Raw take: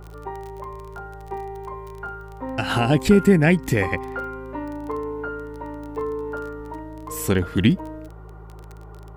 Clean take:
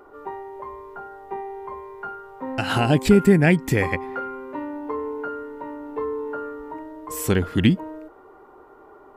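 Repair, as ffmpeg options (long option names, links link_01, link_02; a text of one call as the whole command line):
ffmpeg -i in.wav -af "adeclick=threshold=4,bandreject=frequency=53.9:width_type=h:width=4,bandreject=frequency=107.8:width_type=h:width=4,bandreject=frequency=161.7:width_type=h:width=4" out.wav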